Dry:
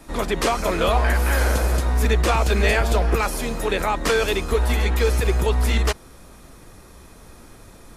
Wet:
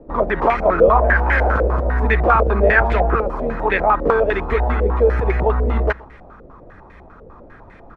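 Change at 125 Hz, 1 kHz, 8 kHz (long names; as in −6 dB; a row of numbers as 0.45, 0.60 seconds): +1.0 dB, +7.0 dB, below −25 dB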